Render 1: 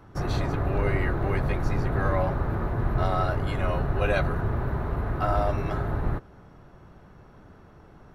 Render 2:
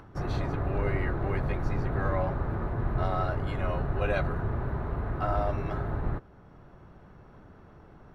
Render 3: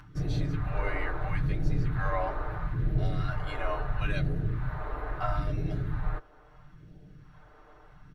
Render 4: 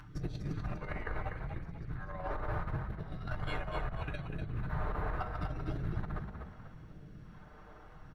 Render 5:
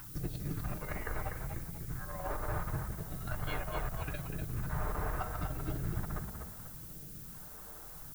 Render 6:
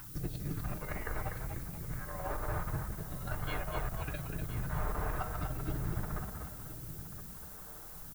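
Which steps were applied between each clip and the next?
upward compressor, threshold -42 dBFS; high shelf 5200 Hz -9.5 dB; gain -3.5 dB
comb 6.6 ms; phaser stages 2, 0.75 Hz, lowest notch 150–1100 Hz
negative-ratio compressor -32 dBFS, ratio -0.5; on a send: frequency-shifting echo 0.245 s, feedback 36%, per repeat +32 Hz, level -6.5 dB; on the sum: gain -5 dB
added noise violet -50 dBFS
echo 1.018 s -12 dB

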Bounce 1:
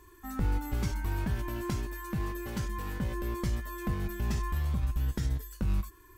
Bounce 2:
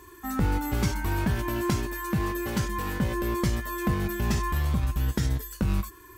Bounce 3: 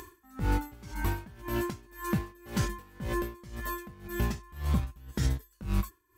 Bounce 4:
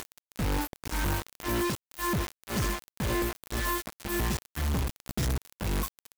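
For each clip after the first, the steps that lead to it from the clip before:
HPF 98 Hz 6 dB/oct; gain +8.5 dB
upward compressor, threshold -42 dBFS; dB-linear tremolo 1.9 Hz, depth 25 dB
crackle 64/s -40 dBFS; companded quantiser 2-bit; gain -1.5 dB

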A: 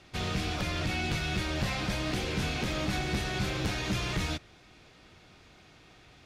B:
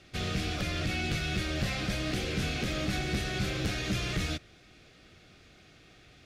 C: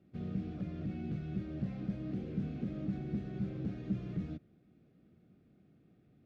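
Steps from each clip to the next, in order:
bell 940 Hz -13 dB 0.34 oct
band-pass 200 Hz, Q 1.8

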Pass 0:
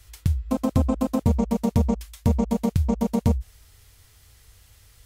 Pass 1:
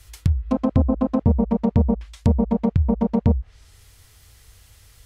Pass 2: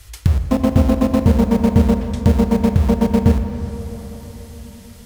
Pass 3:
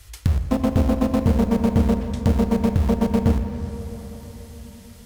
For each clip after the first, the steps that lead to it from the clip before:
treble ducked by the level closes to 890 Hz, closed at -17.5 dBFS; gain +3 dB
in parallel at -12 dB: wrapped overs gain 20.5 dB; on the sum: plate-style reverb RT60 4.7 s, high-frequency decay 0.5×, DRR 7 dB; gain +4 dB
tube stage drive 6 dB, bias 0.45; gain -2 dB

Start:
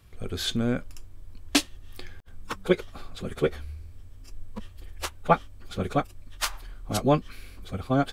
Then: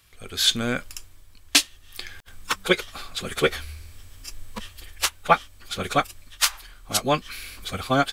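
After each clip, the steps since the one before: tilt shelf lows -8.5 dB, about 930 Hz; AGC gain up to 9.5 dB; gain -1 dB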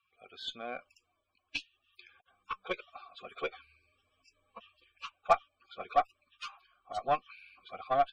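loudest bins only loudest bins 64; vowel filter a; added harmonics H 8 -27 dB, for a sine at -11 dBFS

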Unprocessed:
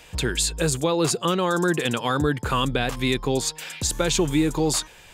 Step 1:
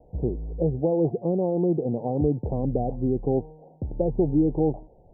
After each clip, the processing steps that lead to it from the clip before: steep low-pass 790 Hz 72 dB/oct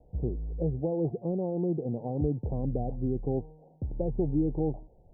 low shelf 180 Hz +7.5 dB; gain -8.5 dB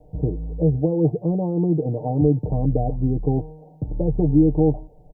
comb 6.6 ms, depth 69%; gain +7.5 dB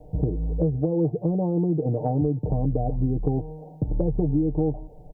compressor 6:1, threshold -24 dBFS, peak gain reduction 12.5 dB; gain +4 dB

